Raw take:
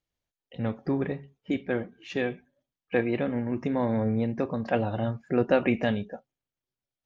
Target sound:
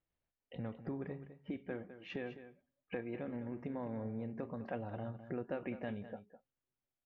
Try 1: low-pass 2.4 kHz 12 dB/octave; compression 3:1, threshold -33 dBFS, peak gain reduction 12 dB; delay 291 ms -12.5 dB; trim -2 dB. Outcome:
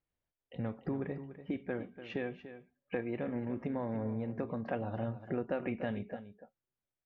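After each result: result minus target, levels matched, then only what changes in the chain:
echo 85 ms late; compression: peak gain reduction -5.5 dB
change: delay 206 ms -12.5 dB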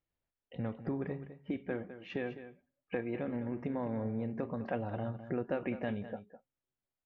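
compression: peak gain reduction -5.5 dB
change: compression 3:1, threshold -41 dBFS, peak gain reduction 17 dB

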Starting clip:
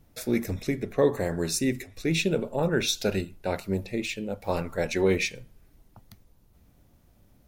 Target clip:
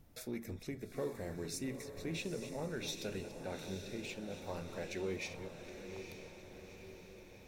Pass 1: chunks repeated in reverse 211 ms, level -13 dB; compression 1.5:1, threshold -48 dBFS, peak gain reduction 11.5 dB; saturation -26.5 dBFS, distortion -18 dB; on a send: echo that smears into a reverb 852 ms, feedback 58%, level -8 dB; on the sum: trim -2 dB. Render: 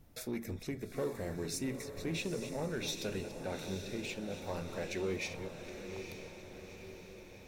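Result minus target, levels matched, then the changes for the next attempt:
compression: peak gain reduction -4 dB
change: compression 1.5:1, threshold -60 dBFS, peak gain reduction 15.5 dB

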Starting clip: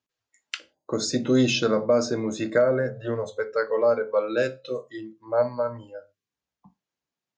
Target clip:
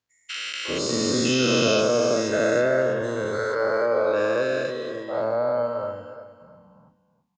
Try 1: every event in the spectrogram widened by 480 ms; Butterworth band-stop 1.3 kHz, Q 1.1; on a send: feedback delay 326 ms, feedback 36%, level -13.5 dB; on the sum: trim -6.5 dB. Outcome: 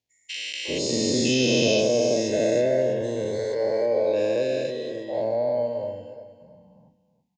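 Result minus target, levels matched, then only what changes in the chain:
1 kHz band -7.0 dB
remove: Butterworth band-stop 1.3 kHz, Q 1.1

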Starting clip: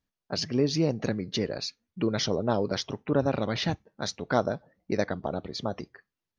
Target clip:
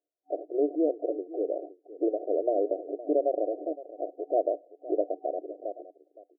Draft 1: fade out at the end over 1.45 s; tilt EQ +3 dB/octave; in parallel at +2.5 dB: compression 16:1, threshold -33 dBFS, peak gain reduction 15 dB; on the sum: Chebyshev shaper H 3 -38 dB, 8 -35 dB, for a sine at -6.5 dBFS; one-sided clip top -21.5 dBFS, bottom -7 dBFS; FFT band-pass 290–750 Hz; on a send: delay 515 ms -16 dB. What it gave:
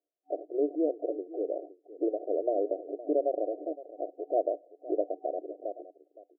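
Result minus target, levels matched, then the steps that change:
compression: peak gain reduction +7 dB
change: compression 16:1, threshold -25.5 dBFS, peak gain reduction 8 dB

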